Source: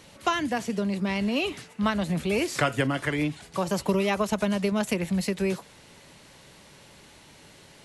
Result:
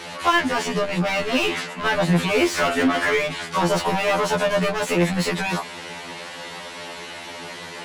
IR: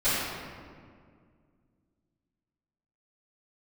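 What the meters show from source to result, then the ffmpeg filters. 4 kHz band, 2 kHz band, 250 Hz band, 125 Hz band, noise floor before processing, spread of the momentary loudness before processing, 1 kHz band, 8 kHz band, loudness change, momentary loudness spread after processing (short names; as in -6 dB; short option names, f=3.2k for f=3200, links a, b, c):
+8.5 dB, +9.0 dB, +2.5 dB, +4.0 dB, -53 dBFS, 4 LU, +8.0 dB, +6.5 dB, +6.0 dB, 14 LU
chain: -filter_complex "[0:a]asplit=2[a][b];[b]highpass=f=720:p=1,volume=29dB,asoftclip=type=tanh:threshold=-11dB[c];[a][c]amix=inputs=2:normalize=0,lowpass=f=2.1k:p=1,volume=-6dB,afftfilt=real='re*2*eq(mod(b,4),0)':imag='im*2*eq(mod(b,4),0)':win_size=2048:overlap=0.75,volume=2dB"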